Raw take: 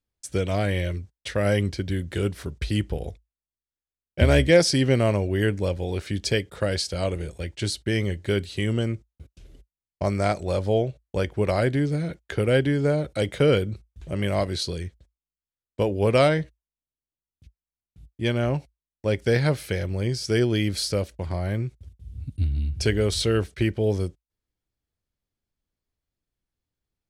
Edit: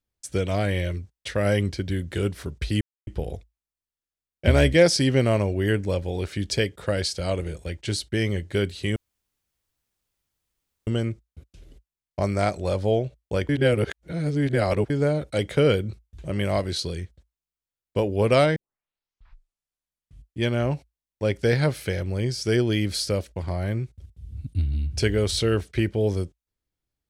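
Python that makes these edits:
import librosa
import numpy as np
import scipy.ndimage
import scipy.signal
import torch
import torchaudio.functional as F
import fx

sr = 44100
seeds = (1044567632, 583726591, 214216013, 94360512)

y = fx.edit(x, sr, fx.insert_silence(at_s=2.81, length_s=0.26),
    fx.insert_room_tone(at_s=8.7, length_s=1.91),
    fx.reverse_span(start_s=11.32, length_s=1.41),
    fx.tape_start(start_s=16.39, length_s=1.83), tone=tone)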